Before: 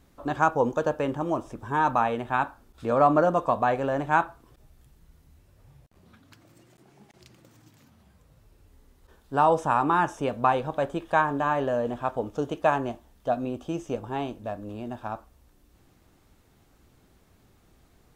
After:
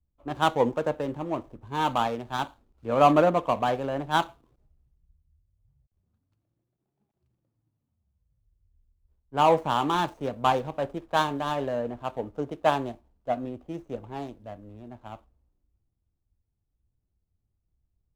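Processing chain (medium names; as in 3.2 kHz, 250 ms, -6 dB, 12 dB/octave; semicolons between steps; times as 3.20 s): median filter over 25 samples; three bands expanded up and down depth 70%; trim -2 dB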